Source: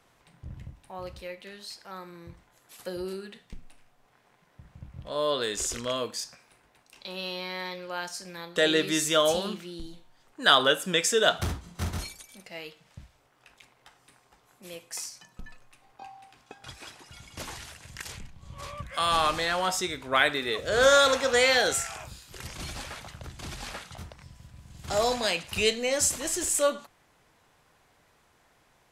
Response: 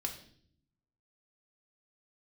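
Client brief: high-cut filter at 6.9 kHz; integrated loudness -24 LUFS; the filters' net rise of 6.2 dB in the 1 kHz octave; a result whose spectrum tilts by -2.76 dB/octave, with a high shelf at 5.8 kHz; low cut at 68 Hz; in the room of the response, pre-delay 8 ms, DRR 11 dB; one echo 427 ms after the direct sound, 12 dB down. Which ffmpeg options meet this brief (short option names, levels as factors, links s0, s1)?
-filter_complex "[0:a]highpass=68,lowpass=6900,equalizer=f=1000:t=o:g=8.5,highshelf=f=5800:g=-4.5,aecho=1:1:427:0.251,asplit=2[s0][s1];[1:a]atrim=start_sample=2205,adelay=8[s2];[s1][s2]afir=irnorm=-1:irlink=0,volume=0.266[s3];[s0][s3]amix=inputs=2:normalize=0,volume=0.944"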